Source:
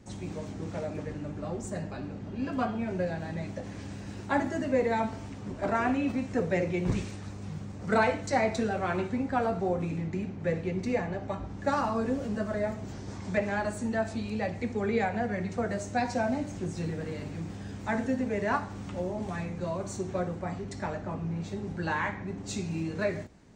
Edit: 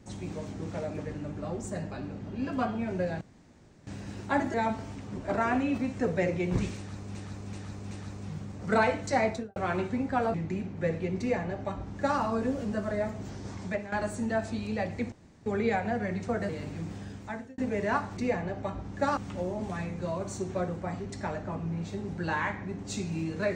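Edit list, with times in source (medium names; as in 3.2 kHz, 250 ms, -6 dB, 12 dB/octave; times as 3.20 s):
3.21–3.87 s: room tone
4.54–4.88 s: delete
7.11–7.49 s: loop, 4 plays
8.45–8.76 s: studio fade out
9.54–9.97 s: delete
10.82–11.82 s: copy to 18.76 s
13.21–13.55 s: fade out, to -13.5 dB
14.75 s: insert room tone 0.34 s
15.78–17.08 s: delete
17.58–18.17 s: fade out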